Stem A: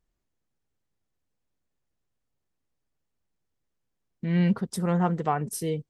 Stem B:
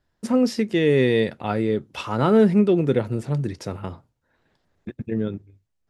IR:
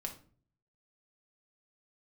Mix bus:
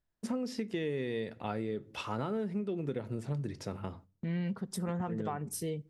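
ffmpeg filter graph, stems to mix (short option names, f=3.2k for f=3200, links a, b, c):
-filter_complex "[0:a]volume=-5.5dB,asplit=2[a][b];[b]volume=-17.5dB[c];[1:a]volume=-9.5dB,asplit=2[d][e];[e]volume=-10.5dB[f];[2:a]atrim=start_sample=2205[g];[c][f]amix=inputs=2:normalize=0[h];[h][g]afir=irnorm=-1:irlink=0[i];[a][d][i]amix=inputs=3:normalize=0,agate=range=-8dB:threshold=-52dB:ratio=16:detection=peak,acompressor=threshold=-31dB:ratio=10"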